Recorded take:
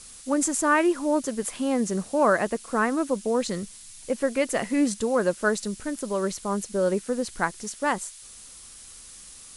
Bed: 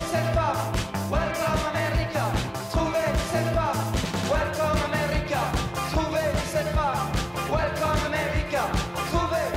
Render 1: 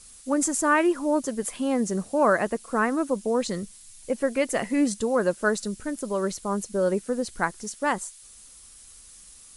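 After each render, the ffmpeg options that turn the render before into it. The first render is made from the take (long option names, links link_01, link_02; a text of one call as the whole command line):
ffmpeg -i in.wav -af "afftdn=noise_reduction=6:noise_floor=-46" out.wav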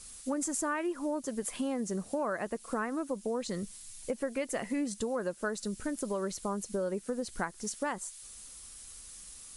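ffmpeg -i in.wav -af "acompressor=threshold=-31dB:ratio=5" out.wav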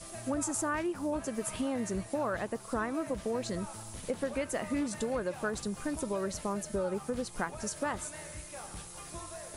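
ffmpeg -i in.wav -i bed.wav -filter_complex "[1:a]volume=-20.5dB[link_01];[0:a][link_01]amix=inputs=2:normalize=0" out.wav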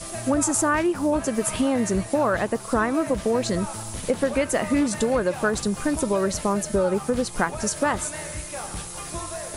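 ffmpeg -i in.wav -af "volume=11dB" out.wav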